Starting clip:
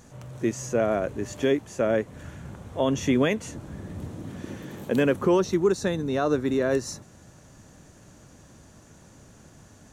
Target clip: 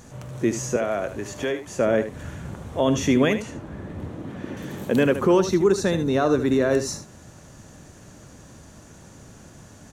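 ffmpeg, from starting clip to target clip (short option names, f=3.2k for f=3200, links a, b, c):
-filter_complex "[0:a]asettb=1/sr,asplit=3[a][b][c];[a]atrim=end=0.764[d];[b]atrim=start=0.76:end=1.67,asetpts=PTS-STARTPTS,afade=t=in:d=0.004:c=qsin,afade=t=out:st=0.906:d=0.004:c=qsin,acrossover=split=580|1900[e][f][g];[e]acompressor=threshold=-36dB:ratio=4[h];[f]acompressor=threshold=-31dB:ratio=4[i];[g]acompressor=threshold=-42dB:ratio=4[j];[h][i][j]amix=inputs=3:normalize=0[k];[c]atrim=start=1.666[l];[d][k]acrossfade=d=0.004:c1=hsin:c2=qsin[m];[m][l]acrossfade=d=0.004:c1=qsin:c2=hsin,asplit=2[n][o];[o]alimiter=limit=-19dB:level=0:latency=1,volume=-2.5dB[p];[n][p]amix=inputs=2:normalize=0,asettb=1/sr,asplit=3[q][r][s];[q]atrim=end=3.424[t];[r]atrim=start=3.42:end=4.57,asetpts=PTS-STARTPTS,afade=t=in:d=0.004:c=qsin,afade=t=out:st=1.146:d=0.004:c=qsin,bass=f=250:g=-4,treble=f=4k:g=-12[u];[s]atrim=start=4.566[v];[t][u]acrossfade=d=0.004:c1=hsin:c2=qsin[w];[w][v]acrossfade=d=0.004:c1=qsin:c2=hsin,aecho=1:1:76:0.282"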